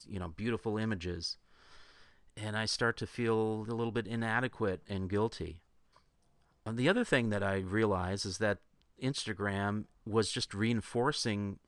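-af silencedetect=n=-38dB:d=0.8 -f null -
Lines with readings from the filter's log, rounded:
silence_start: 1.32
silence_end: 2.37 | silence_duration: 1.05
silence_start: 5.51
silence_end: 6.66 | silence_duration: 1.15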